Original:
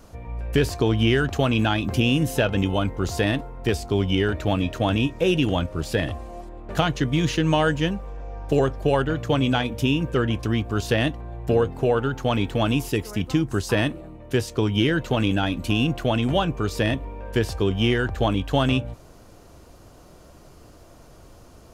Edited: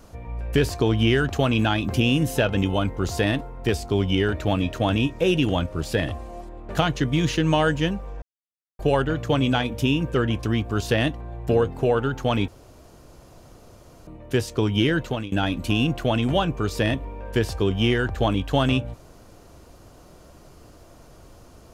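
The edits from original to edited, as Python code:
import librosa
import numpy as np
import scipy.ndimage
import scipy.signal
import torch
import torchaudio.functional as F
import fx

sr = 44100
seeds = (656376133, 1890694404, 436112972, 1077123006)

y = fx.edit(x, sr, fx.silence(start_s=8.22, length_s=0.57),
    fx.room_tone_fill(start_s=12.48, length_s=1.59),
    fx.fade_out_to(start_s=15.0, length_s=0.32, floor_db=-21.5), tone=tone)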